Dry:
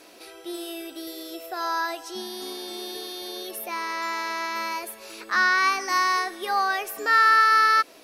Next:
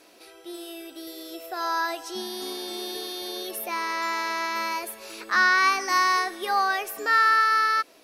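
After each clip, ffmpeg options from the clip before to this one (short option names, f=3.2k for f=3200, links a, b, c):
-af "dynaudnorm=f=410:g=7:m=6dB,volume=-4.5dB"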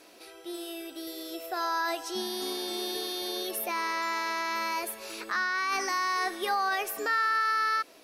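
-af "alimiter=limit=-20dB:level=0:latency=1:release=24"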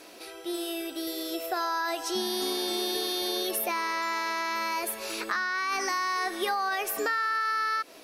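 -af "acompressor=threshold=-31dB:ratio=6,volume=5.5dB"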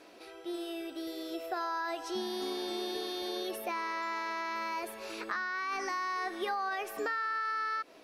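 -af "lowpass=f=2.6k:p=1,volume=-4.5dB"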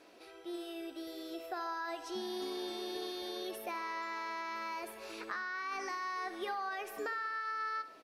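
-af "aecho=1:1:66|132|198|264|330:0.188|0.0942|0.0471|0.0235|0.0118,volume=-4.5dB"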